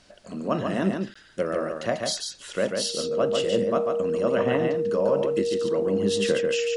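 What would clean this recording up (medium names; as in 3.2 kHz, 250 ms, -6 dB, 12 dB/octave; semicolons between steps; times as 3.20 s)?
band-stop 470 Hz, Q 30; interpolate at 1.14 s, 15 ms; expander -36 dBFS, range -21 dB; inverse comb 143 ms -4.5 dB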